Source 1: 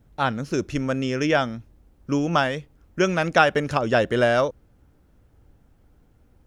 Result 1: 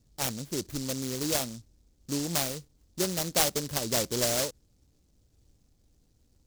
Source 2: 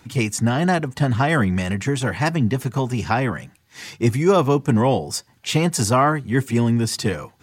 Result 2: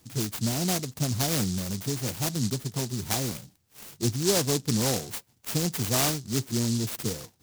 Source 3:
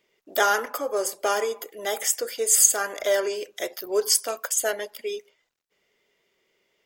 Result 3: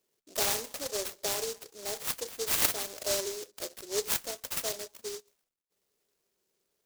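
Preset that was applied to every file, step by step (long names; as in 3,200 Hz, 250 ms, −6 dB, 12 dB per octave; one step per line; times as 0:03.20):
short delay modulated by noise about 5,600 Hz, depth 0.24 ms
level −8.5 dB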